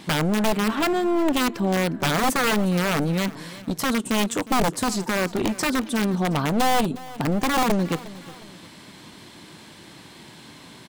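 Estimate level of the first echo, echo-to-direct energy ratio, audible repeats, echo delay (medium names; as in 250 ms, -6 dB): -18.5 dB, -17.5 dB, 2, 359 ms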